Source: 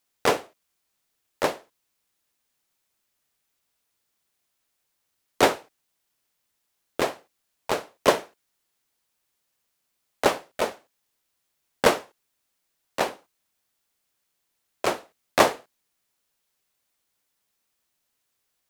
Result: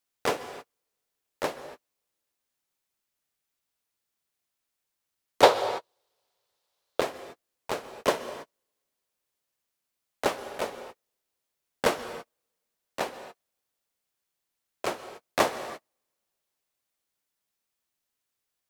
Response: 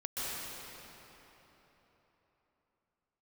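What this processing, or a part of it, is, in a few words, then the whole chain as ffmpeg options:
keyed gated reverb: -filter_complex "[0:a]asplit=3[a][b][c];[1:a]atrim=start_sample=2205[d];[b][d]afir=irnorm=-1:irlink=0[e];[c]apad=whole_len=824353[f];[e][f]sidechaingate=range=-45dB:threshold=-54dB:ratio=16:detection=peak,volume=-12.5dB[g];[a][g]amix=inputs=2:normalize=0,asettb=1/sr,asplit=3[h][i][j];[h]atrim=end=5.434[k];[i]atrim=start=5.43:end=7.01,asetpts=PTS-STARTPTS,afade=t=in:d=0.004:c=qsin,afade=t=out:st=1.576:d=0.004:c=qsin,equalizer=f=125:t=o:w=1:g=5,equalizer=f=250:t=o:w=1:g=-7,equalizer=f=500:t=o:w=1:g=11,equalizer=f=1k:t=o:w=1:g=8,equalizer=f=4k:t=o:w=1:g=10[l];[j]atrim=start=7.006[m];[k][l]acrossfade=d=0.004:c1=hsin:c2=qsin[n];[n][m]acrossfade=d=0.004:c1=qsin:c2=hsin,volume=-7dB"

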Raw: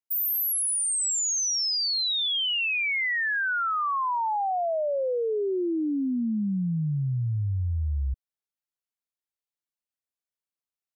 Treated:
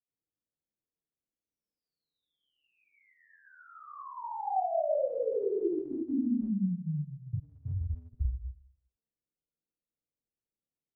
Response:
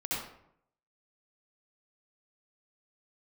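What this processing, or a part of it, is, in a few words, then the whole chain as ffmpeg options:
next room: -filter_complex "[0:a]lowpass=f=530:w=0.5412,lowpass=f=530:w=1.3066[a];[1:a]atrim=start_sample=2205[b];[a][b]afir=irnorm=-1:irlink=0,asplit=3[c][d][e];[c]afade=t=out:st=6.17:d=0.02[f];[d]highpass=f=260:w=0.5412,highpass=f=260:w=1.3066,afade=t=in:st=6.17:d=0.02,afade=t=out:st=7.33:d=0.02[g];[e]afade=t=in:st=7.33:d=0.02[h];[f][g][h]amix=inputs=3:normalize=0,afftfilt=real='re*lt(hypot(re,im),0.631)':imag='im*lt(hypot(re,im),0.631)':win_size=1024:overlap=0.75,volume=2dB"

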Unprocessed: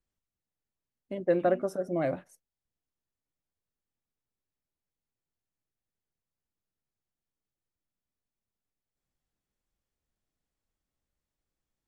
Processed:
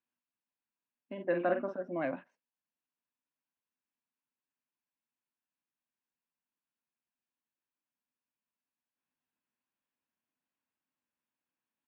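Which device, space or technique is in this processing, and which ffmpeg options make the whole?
kitchen radio: -filter_complex "[0:a]asplit=3[a][b][c];[a]afade=t=out:st=1.17:d=0.02[d];[b]asplit=2[e][f];[f]adelay=46,volume=-6dB[g];[e][g]amix=inputs=2:normalize=0,afade=t=in:st=1.17:d=0.02,afade=t=out:st=1.73:d=0.02[h];[c]afade=t=in:st=1.73:d=0.02[i];[d][h][i]amix=inputs=3:normalize=0,highpass=200,equalizer=f=250:t=q:w=4:g=8,equalizer=f=420:t=q:w=4:g=-4,equalizer=f=990:t=q:w=4:g=9,equalizer=f=1.6k:t=q:w=4:g=7,equalizer=f=2.6k:t=q:w=4:g=8,lowpass=f=3.6k:w=0.5412,lowpass=f=3.6k:w=1.3066,volume=-6dB"

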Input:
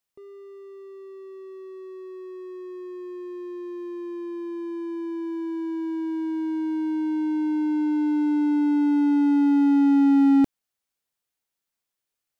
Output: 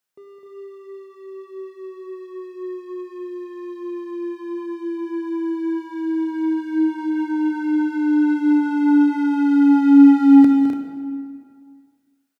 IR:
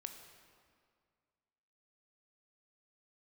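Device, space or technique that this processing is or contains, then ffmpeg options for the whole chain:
stadium PA: -filter_complex "[0:a]highpass=130,equalizer=f=1.5k:t=o:w=0.22:g=7,aecho=1:1:209.9|256.6|288.6:0.316|0.501|0.316[a];[1:a]atrim=start_sample=2205[b];[a][b]afir=irnorm=-1:irlink=0,volume=7dB"

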